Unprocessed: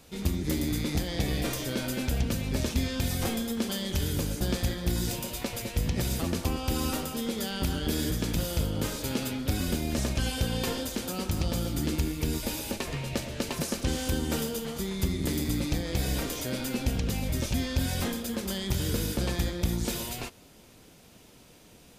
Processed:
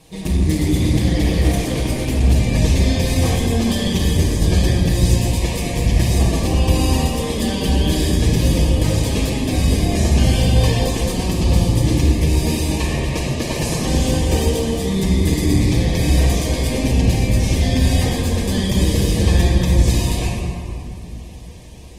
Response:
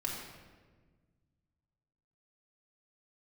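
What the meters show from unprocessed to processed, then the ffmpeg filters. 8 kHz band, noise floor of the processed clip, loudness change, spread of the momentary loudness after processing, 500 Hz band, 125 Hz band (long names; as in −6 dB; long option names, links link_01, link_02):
+9.0 dB, −31 dBFS, +12.5 dB, 5 LU, +11.5 dB, +15.0 dB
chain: -filter_complex "[0:a]asuperstop=centerf=1400:order=8:qfactor=3.7[link_01];[1:a]atrim=start_sample=2205,asetrate=22491,aresample=44100[link_02];[link_01][link_02]afir=irnorm=-1:irlink=0,volume=3.5dB" -ar 48000 -c:a libopus -b:a 20k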